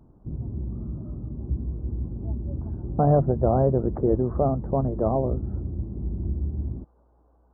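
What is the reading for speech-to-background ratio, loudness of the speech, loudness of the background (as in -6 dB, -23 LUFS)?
8.5 dB, -24.0 LUFS, -32.5 LUFS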